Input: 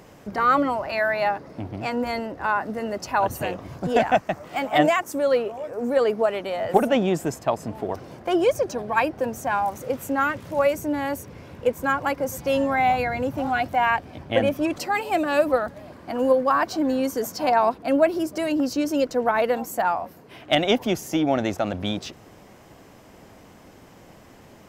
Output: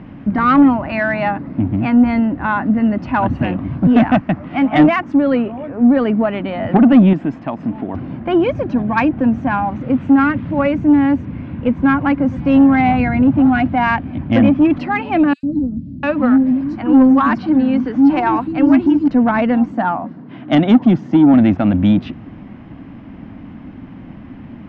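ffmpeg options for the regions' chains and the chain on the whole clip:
ffmpeg -i in.wav -filter_complex "[0:a]asettb=1/sr,asplit=3[link_01][link_02][link_03];[link_01]atrim=end=7.134[link_04];[link_02]atrim=start=7.13:end=7.94,asetpts=PTS-STARTPTS,afade=type=in:duration=0.004:curve=qsin,afade=type=out:start_time=0.806:duration=0.004:curve=qsin,equalizer=frequency=61:width=0.48:gain=-13,acompressor=threshold=-32dB:ratio=1.5:attack=3.2:release=140:knee=1:detection=peak[link_05];[link_03]atrim=start=7.936[link_06];[link_04][link_05]acrossfade=duration=0.004:curve1=hsin:curve2=qsin[link_07];[link_07][link_06]acrossfade=duration=0.004:curve1=qsin:curve2=hsin,asettb=1/sr,asplit=3[link_08][link_09][link_10];[link_08]atrim=end=15.334[link_11];[link_09]atrim=start=15.33:end=19.08,asetpts=PTS-STARTPTS,afade=type=in:duration=0.004:curve=qsin,afade=type=out:start_time=3.746:duration=0.004:curve=qsin,highshelf=frequency=7600:gain=10,bandreject=frequency=660:width=6.7,acrossover=split=320|5800[link_12][link_13][link_14];[link_12]adelay=100[link_15];[link_13]adelay=700[link_16];[link_15][link_16][link_14]amix=inputs=3:normalize=0,atrim=end_sample=165375[link_17];[link_10]atrim=start=19.076[link_18];[link_11][link_17]acrossfade=duration=0.004:curve1=hsin:curve2=qsin[link_19];[link_19][link_18]acrossfade=duration=0.004:curve1=qsin:curve2=hsin,asettb=1/sr,asplit=3[link_20][link_21][link_22];[link_20]atrim=end=19.724[link_23];[link_21]atrim=start=19.72:end=21.34,asetpts=PTS-STARTPTS,afade=type=in:duration=0.004:curve=qsin,afade=type=out:start_time=1.616:duration=0.004:curve=qsin,highpass=frequency=120:width=0.5412,highpass=frequency=120:width=1.3066,equalizer=frequency=2500:width=2.5:gain=-7.5[link_24];[link_22]atrim=start=21.336[link_25];[link_23][link_24]acrossfade=duration=0.004:curve1=hsin:curve2=qsin[link_26];[link_26][link_25]acrossfade=duration=0.004:curve1=qsin:curve2=hsin,lowpass=frequency=2900:width=0.5412,lowpass=frequency=2900:width=1.3066,lowshelf=frequency=340:width_type=q:width=3:gain=8,acontrast=87,volume=-1dB" out.wav

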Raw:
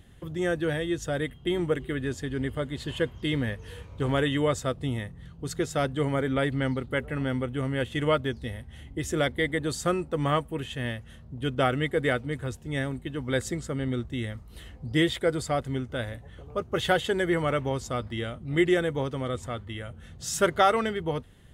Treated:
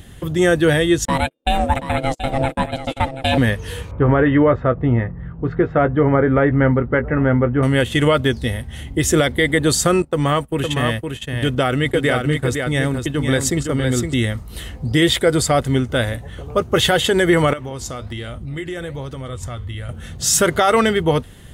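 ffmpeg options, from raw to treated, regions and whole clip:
ffmpeg -i in.wav -filter_complex "[0:a]asettb=1/sr,asplit=3[link_01][link_02][link_03];[link_01]atrim=end=1.054[link_04];[link_02]atrim=start=1.05:end=3.38,asetpts=PTS-STARTPTS,afade=type=in:duration=0.004:curve=qsin,afade=type=out:start_time=2.326:duration=0.004:curve=qsin,agate=range=-37dB:threshold=-34dB:ratio=16:release=100:detection=peak,aeval=exprs='val(0)*sin(2*PI*400*n/s)':channel_layout=same,aecho=1:1:730:0.266,atrim=end_sample=102753[link_05];[link_03]atrim=start=3.376[link_06];[link_04][link_05]acrossfade=duration=0.004:curve1=hsin:curve2=qsin[link_07];[link_07][link_06]acrossfade=duration=0.004:curve1=qsin:curve2=hsin,asettb=1/sr,asplit=3[link_08][link_09][link_10];[link_08]atrim=end=3.914[link_11];[link_09]atrim=start=3.91:end=7.63,asetpts=PTS-STARTPTS,afade=type=in:duration=0.004:curve=qsin,afade=type=out:start_time=3.716:duration=0.004:curve=qsin,lowpass=frequency=1800:width=0.5412,lowpass=frequency=1800:width=1.3066,asplit=2[link_12][link_13];[link_13]adelay=17,volume=-10.5dB[link_14];[link_12][link_14]amix=inputs=2:normalize=0,atrim=end_sample=164052[link_15];[link_10]atrim=start=7.626[link_16];[link_11][link_15]acrossfade=duration=0.004:curve1=hsin:curve2=qsin[link_17];[link_17][link_16]acrossfade=duration=0.004:curve1=qsin:curve2=hsin,asettb=1/sr,asplit=3[link_18][link_19][link_20];[link_18]atrim=end=10.024[link_21];[link_19]atrim=start=10.02:end=14.14,asetpts=PTS-STARTPTS,afade=type=in:duration=0.004:curve=qsin,afade=type=out:start_time=4.116:duration=0.004:curve=qsin,agate=range=-19dB:threshold=-39dB:ratio=16:release=100:detection=peak,acompressor=threshold=-30dB:ratio=2:attack=3.2:release=140:knee=1:detection=peak,aecho=1:1:511:0.531,atrim=end_sample=181692[link_22];[link_20]atrim=start=14.136[link_23];[link_21][link_22]acrossfade=duration=0.004:curve1=hsin:curve2=qsin[link_24];[link_24][link_23]acrossfade=duration=0.004:curve1=qsin:curve2=hsin,asettb=1/sr,asplit=3[link_25][link_26][link_27];[link_25]atrim=end=17.534[link_28];[link_26]atrim=start=17.53:end=19.89,asetpts=PTS-STARTPTS,afade=type=in:duration=0.004:curve=qsin,afade=type=out:start_time=2.356:duration=0.004:curve=qsin,asubboost=boost=6.5:cutoff=120,acompressor=threshold=-34dB:ratio=5:attack=3.2:release=140:knee=1:detection=peak,flanger=delay=3.2:depth=9.2:regen=-82:speed=1.2:shape=sinusoidal[link_29];[link_27]atrim=start=19.886[link_30];[link_28][link_29]acrossfade=duration=0.004:curve1=hsin:curve2=qsin[link_31];[link_31][link_30]acrossfade=duration=0.004:curve1=qsin:curve2=hsin,highshelf=frequency=5100:gain=6,alimiter=level_in=17.5dB:limit=-1dB:release=50:level=0:latency=1,volume=-4.5dB" out.wav

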